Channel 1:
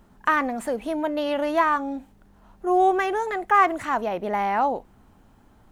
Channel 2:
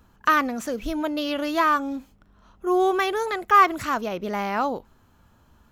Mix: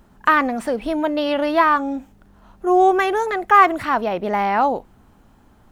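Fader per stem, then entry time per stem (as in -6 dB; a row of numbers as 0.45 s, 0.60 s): +2.5 dB, -6.0 dB; 0.00 s, 0.00 s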